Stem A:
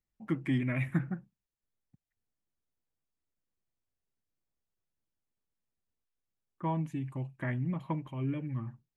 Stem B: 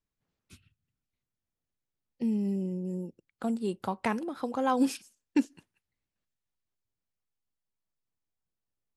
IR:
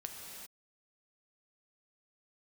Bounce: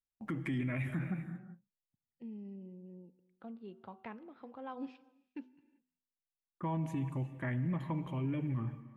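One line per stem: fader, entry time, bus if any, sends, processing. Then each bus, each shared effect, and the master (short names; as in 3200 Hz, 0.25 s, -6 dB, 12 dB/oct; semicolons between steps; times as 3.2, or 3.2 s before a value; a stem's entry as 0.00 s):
0.0 dB, 0.00 s, send -6.5 dB, gate with hold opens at -44 dBFS
-17.5 dB, 0.00 s, send -16.5 dB, LPF 3400 Hz 24 dB/oct; de-hum 126.9 Hz, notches 12; auto duck -11 dB, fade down 1.75 s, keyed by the first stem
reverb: on, pre-delay 3 ms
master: limiter -28 dBFS, peak gain reduction 11.5 dB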